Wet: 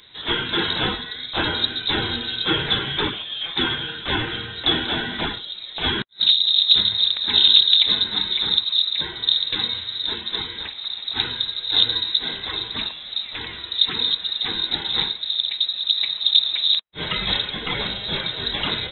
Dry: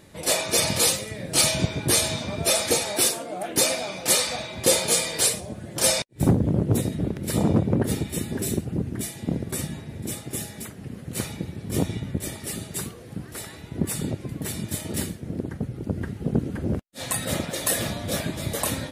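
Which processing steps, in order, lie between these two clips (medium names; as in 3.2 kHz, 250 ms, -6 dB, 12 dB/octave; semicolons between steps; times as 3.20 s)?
treble shelf 2.4 kHz +6.5 dB, from 17.66 s +11.5 dB; level rider gain up to 5.5 dB; frequency inversion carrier 3.9 kHz; trim +1 dB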